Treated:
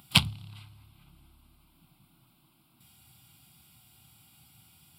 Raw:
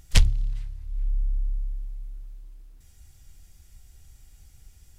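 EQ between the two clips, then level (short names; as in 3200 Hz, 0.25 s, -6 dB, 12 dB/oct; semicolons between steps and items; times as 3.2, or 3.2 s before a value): HPF 140 Hz 24 dB/oct; fixed phaser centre 1800 Hz, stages 6; +7.5 dB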